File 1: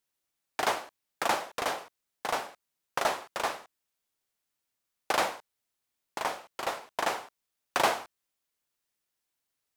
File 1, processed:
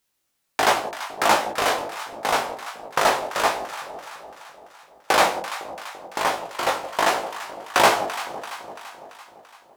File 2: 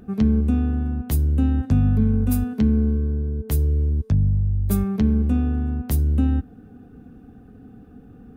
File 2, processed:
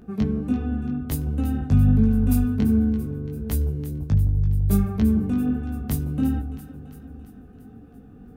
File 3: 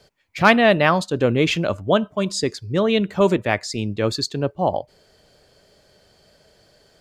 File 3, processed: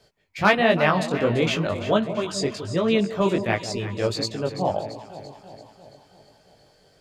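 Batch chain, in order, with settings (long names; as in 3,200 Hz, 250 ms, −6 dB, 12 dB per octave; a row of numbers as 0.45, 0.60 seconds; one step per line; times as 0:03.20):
delay that swaps between a low-pass and a high-pass 169 ms, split 840 Hz, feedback 75%, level −10 dB
chorus effect 1.4 Hz, delay 17.5 ms, depth 3.6 ms
loudness normalisation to −23 LKFS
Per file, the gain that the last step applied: +13.0, +1.5, −0.5 decibels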